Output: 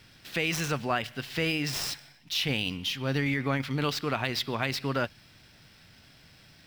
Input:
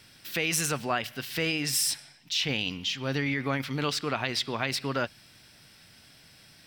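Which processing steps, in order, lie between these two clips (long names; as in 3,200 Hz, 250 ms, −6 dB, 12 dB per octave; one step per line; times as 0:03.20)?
running median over 5 samples
low-shelf EQ 110 Hz +6.5 dB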